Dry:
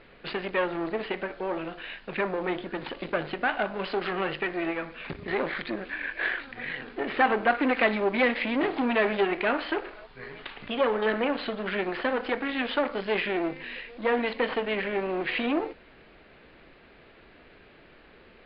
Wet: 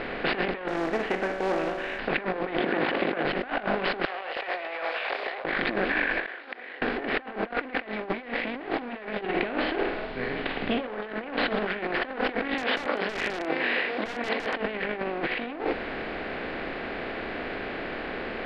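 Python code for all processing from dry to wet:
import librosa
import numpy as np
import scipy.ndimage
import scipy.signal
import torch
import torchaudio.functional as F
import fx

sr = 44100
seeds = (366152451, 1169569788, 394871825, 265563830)

y = fx.chain(x, sr, fx.high_shelf(hz=3300.0, db=-10.5),
    fx.comb_fb(f0_hz=190.0, decay_s=1.5, harmonics='all', damping=0.0, mix_pct=70),
    fx.quant_float(bits=2), at=(0.68, 1.99))
y = fx.chain(y, sr, fx.over_compress(threshold_db=-35.0, ratio=-0.5),
    fx.bandpass_edges(low_hz=180.0, high_hz=3500.0), at=(2.59, 3.25))
y = fx.chain(y, sr, fx.steep_highpass(hz=600.0, slope=36),
    fx.peak_eq(hz=1500.0, db=-10.5, octaves=1.9),
    fx.over_compress(threshold_db=-51.0, ratio=-1.0), at=(4.05, 5.45))
y = fx.chain(y, sr, fx.highpass(hz=370.0, slope=24),
    fx.gate_flip(shuts_db=-30.0, range_db=-29), at=(6.26, 6.82))
y = fx.chain(y, sr, fx.lowpass(hz=4400.0, slope=24),
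    fx.peak_eq(hz=1300.0, db=-11.0, octaves=2.7),
    fx.room_flutter(wall_m=8.2, rt60_s=0.35), at=(9.21, 10.88))
y = fx.chain(y, sr, fx.highpass(hz=330.0, slope=12),
    fx.overflow_wrap(gain_db=21.5), at=(12.54, 14.56))
y = fx.bin_compress(y, sr, power=0.6)
y = scipy.signal.sosfilt(scipy.signal.butter(2, 3800.0, 'lowpass', fs=sr, output='sos'), y)
y = fx.over_compress(y, sr, threshold_db=-28.0, ratio=-0.5)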